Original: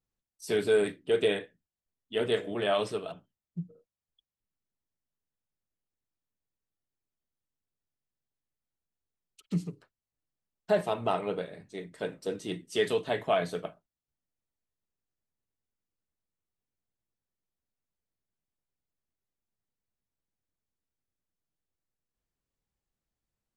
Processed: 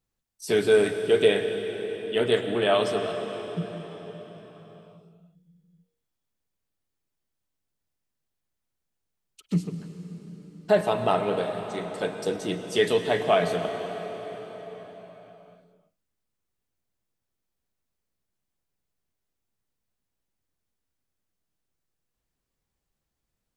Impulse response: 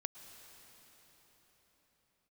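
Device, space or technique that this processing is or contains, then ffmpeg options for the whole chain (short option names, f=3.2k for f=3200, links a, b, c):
cathedral: -filter_complex "[1:a]atrim=start_sample=2205[a];[0:a][a]afir=irnorm=-1:irlink=0,asettb=1/sr,asplit=3[b][c][d];[b]atrim=end=11.374[e];[c]atrim=start=11.37:end=12.37,asetpts=PTS-STARTPTS,afade=t=in:d=0.004:c=qsin,afade=t=out:st=0.996:d=0.004:c=qsin,equalizer=f=7k:t=o:w=1.6:g=5[f];[d]atrim=start=12.366[g];[e][f]acrossfade=d=0.004:c1=hsin:c2=qsin[h];[h][g]acrossfade=d=0.004:c1=qsin:c2=hsin,volume=8.5dB"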